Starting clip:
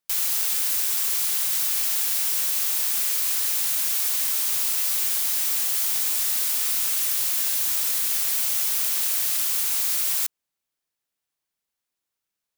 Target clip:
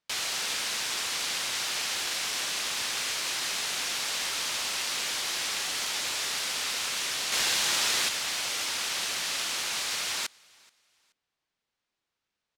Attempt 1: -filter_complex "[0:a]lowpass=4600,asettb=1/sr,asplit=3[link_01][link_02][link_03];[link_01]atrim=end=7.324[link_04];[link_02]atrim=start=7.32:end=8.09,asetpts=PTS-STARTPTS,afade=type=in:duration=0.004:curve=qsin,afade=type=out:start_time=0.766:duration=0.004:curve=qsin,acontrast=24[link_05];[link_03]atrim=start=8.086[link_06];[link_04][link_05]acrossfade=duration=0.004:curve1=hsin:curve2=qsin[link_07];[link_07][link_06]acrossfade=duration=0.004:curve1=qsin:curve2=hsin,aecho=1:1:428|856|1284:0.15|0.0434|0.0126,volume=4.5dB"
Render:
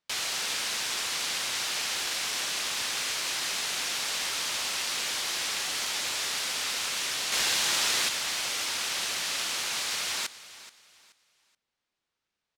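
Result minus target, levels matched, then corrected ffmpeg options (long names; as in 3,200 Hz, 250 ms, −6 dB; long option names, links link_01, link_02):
echo-to-direct +10.5 dB
-filter_complex "[0:a]lowpass=4600,asettb=1/sr,asplit=3[link_01][link_02][link_03];[link_01]atrim=end=7.324[link_04];[link_02]atrim=start=7.32:end=8.09,asetpts=PTS-STARTPTS,afade=type=in:duration=0.004:curve=qsin,afade=type=out:start_time=0.766:duration=0.004:curve=qsin,acontrast=24[link_05];[link_03]atrim=start=8.086[link_06];[link_04][link_05]acrossfade=duration=0.004:curve1=hsin:curve2=qsin[link_07];[link_07][link_06]acrossfade=duration=0.004:curve1=qsin:curve2=hsin,aecho=1:1:428|856:0.0447|0.013,volume=4.5dB"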